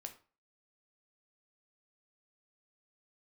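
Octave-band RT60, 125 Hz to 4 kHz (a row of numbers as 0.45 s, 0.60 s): 0.40 s, 0.35 s, 0.35 s, 0.40 s, 0.35 s, 0.30 s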